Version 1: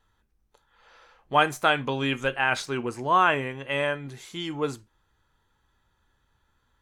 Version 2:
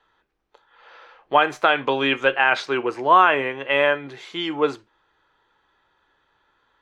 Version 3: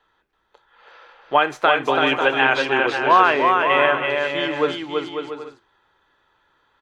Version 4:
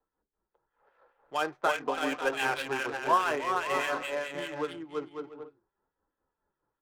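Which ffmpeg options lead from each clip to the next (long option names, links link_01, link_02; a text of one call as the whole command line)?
ffmpeg -i in.wav -filter_complex "[0:a]equalizer=frequency=230:width=6.3:gain=-11,alimiter=limit=-12.5dB:level=0:latency=1:release=127,acrossover=split=230 4500:gain=0.112 1 0.0708[link_01][link_02][link_03];[link_01][link_02][link_03]amix=inputs=3:normalize=0,volume=8.5dB" out.wav
ffmpeg -i in.wav -af "aecho=1:1:330|544.5|683.9|774.6|833.5:0.631|0.398|0.251|0.158|0.1" out.wav
ffmpeg -i in.wav -filter_complex "[0:a]flanger=delay=3.8:depth=3.7:regen=-42:speed=0.49:shape=sinusoidal,acrossover=split=1800[link_01][link_02];[link_01]aeval=exprs='val(0)*(1-0.7/2+0.7/2*cos(2*PI*4.8*n/s))':channel_layout=same[link_03];[link_02]aeval=exprs='val(0)*(1-0.7/2-0.7/2*cos(2*PI*4.8*n/s))':channel_layout=same[link_04];[link_03][link_04]amix=inputs=2:normalize=0,acrossover=split=520[link_05][link_06];[link_06]adynamicsmooth=sensitivity=6:basefreq=850[link_07];[link_05][link_07]amix=inputs=2:normalize=0,volume=-5dB" out.wav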